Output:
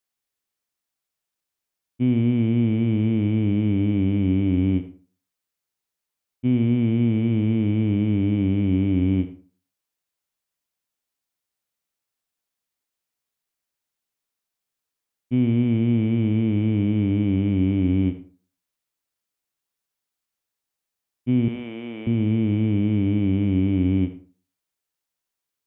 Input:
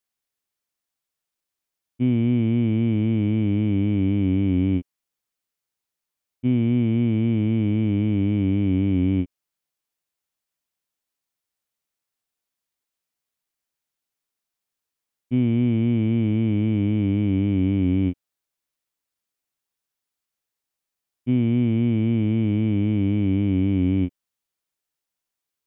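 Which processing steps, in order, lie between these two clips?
0:21.48–0:22.07: high-pass filter 510 Hz 12 dB per octave
on a send: convolution reverb RT60 0.40 s, pre-delay 57 ms, DRR 11 dB

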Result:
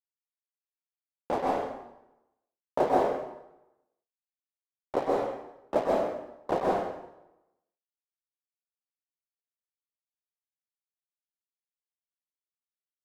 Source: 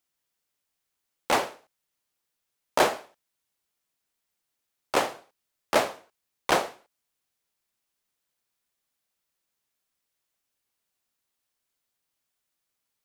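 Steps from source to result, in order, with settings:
Chebyshev low-pass filter 630 Hz, order 2
dead-zone distortion −38 dBFS
dense smooth reverb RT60 0.91 s, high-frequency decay 0.8×, pre-delay 115 ms, DRR −3.5 dB
level −1 dB

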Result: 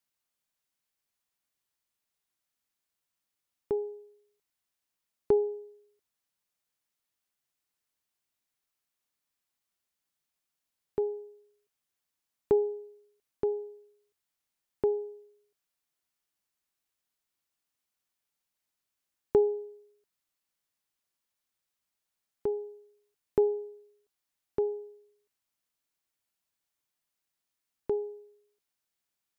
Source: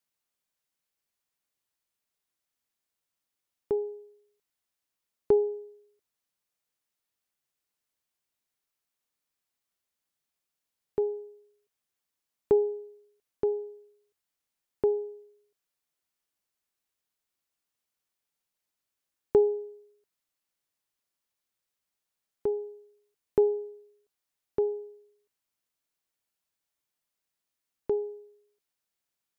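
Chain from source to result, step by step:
parametric band 470 Hz −2.5 dB 0.77 octaves

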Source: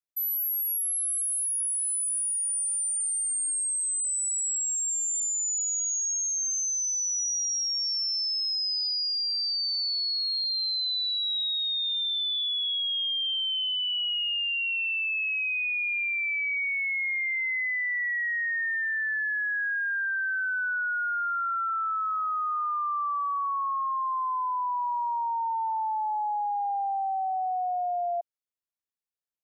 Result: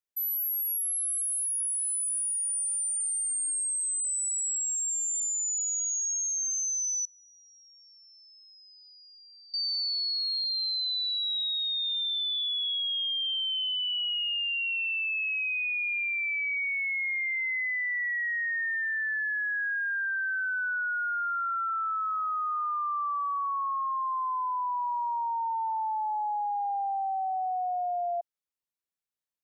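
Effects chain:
0:07.05–0:09.54: low-pass filter 1,300 Hz 12 dB per octave
level −1.5 dB

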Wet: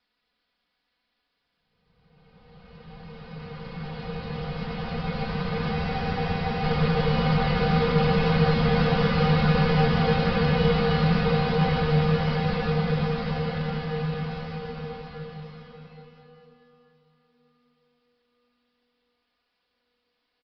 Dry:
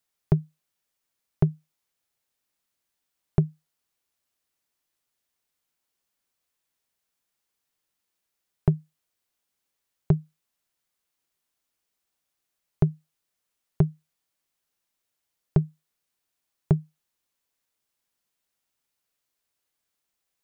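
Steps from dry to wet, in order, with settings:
each half-wave held at its own peak
comb filter 4.1 ms, depth 68%
hum removal 242.9 Hz, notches 5
in parallel at −3 dB: brickwall limiter −13 dBFS, peak gain reduction 8 dB
on the sum: extreme stretch with random phases 15×, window 1.00 s, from 0:02.78
on a send at −5.5 dB: convolution reverb RT60 2.3 s, pre-delay 93 ms
on the sum: downsampling to 11,025 Hz
frozen spectrum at 0:05.77, 0.85 s
level −1.5 dB

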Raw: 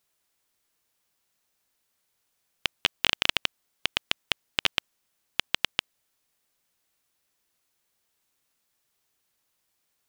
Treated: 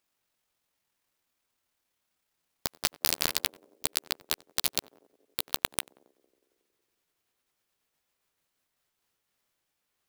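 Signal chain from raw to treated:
pitch glide at a constant tempo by +11.5 semitones ending unshifted
on a send: feedback echo with a band-pass in the loop 91 ms, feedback 79%, band-pass 390 Hz, level −14 dB
on the sum: regular buffer underruns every 0.13 s, samples 512, repeat, from 0:00.81
converter with an unsteady clock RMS 0.04 ms
level −1 dB

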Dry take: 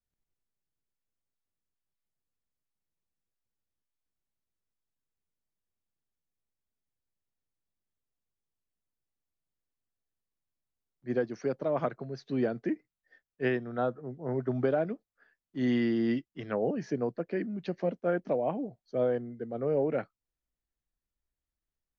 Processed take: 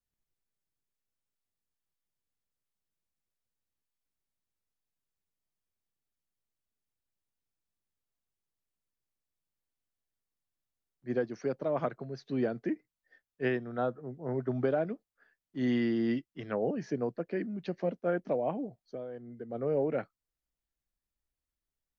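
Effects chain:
0:18.83–0:19.50: downward compressor 12 to 1, threshold −36 dBFS, peak gain reduction 13 dB
level −1.5 dB

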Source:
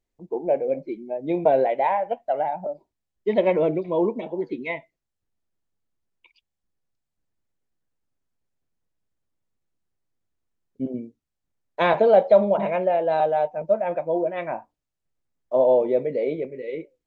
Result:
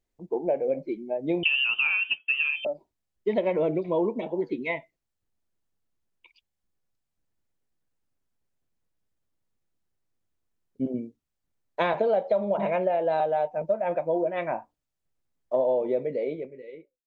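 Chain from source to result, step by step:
fade-out on the ending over 1.38 s
downward compressor 6 to 1, threshold −21 dBFS, peak gain reduction 10.5 dB
0:01.43–0:02.65: voice inversion scrambler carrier 3,300 Hz

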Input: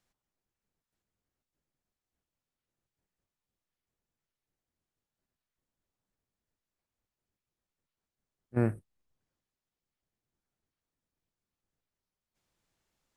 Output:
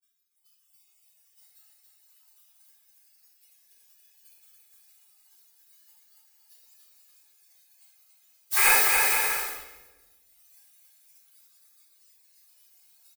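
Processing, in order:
mains-hum notches 60/120/180/240/300/360 Hz
bit-depth reduction 10 bits, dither triangular
low-shelf EQ 220 Hz +8.5 dB
automatic gain control gain up to 14 dB
gate on every frequency bin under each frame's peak −30 dB weak
on a send: bouncing-ball delay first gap 280 ms, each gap 0.65×, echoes 5
on the sum: noise reduction from a noise print of the clip's start 7 dB
spectral tilt +4 dB per octave
comb filter 2.4 ms, depth 84%
rectangular room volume 630 cubic metres, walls mixed, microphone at 3.6 metres
level +5 dB

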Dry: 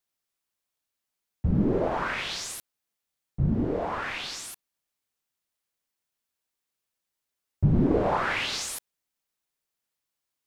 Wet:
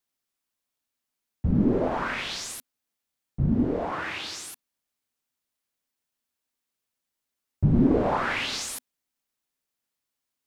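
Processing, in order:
parametric band 250 Hz +7 dB 0.3 octaves
0:03.91–0:04.52: frequency shifter +68 Hz

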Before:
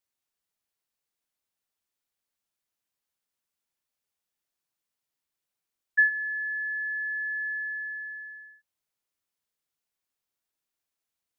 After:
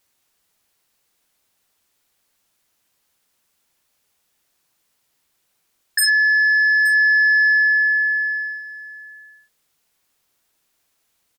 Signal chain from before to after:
sine wavefolder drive 14 dB, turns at −13 dBFS
on a send: single-tap delay 871 ms −17 dB

